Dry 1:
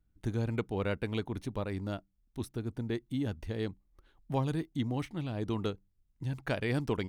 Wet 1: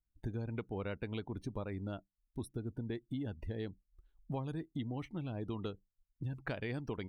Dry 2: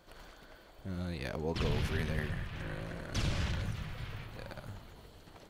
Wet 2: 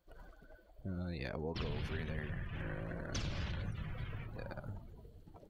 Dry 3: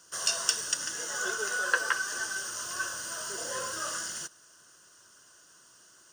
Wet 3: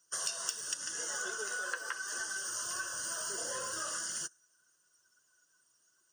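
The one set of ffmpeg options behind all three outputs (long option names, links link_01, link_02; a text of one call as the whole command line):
ffmpeg -i in.wav -af "afftdn=noise_reduction=20:noise_floor=-49,acompressor=threshold=-38dB:ratio=4,highshelf=frequency=11000:gain=11,volume=1dB" out.wav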